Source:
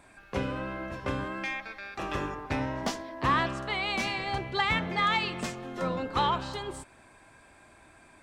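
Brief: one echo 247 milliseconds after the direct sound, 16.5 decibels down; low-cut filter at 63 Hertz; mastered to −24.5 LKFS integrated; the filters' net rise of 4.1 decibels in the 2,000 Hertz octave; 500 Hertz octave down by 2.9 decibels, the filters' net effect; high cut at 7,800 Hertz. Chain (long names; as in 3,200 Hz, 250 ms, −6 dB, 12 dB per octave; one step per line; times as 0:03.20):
high-pass filter 63 Hz
low-pass filter 7,800 Hz
parametric band 500 Hz −4 dB
parametric band 2,000 Hz +5 dB
single-tap delay 247 ms −16.5 dB
level +4.5 dB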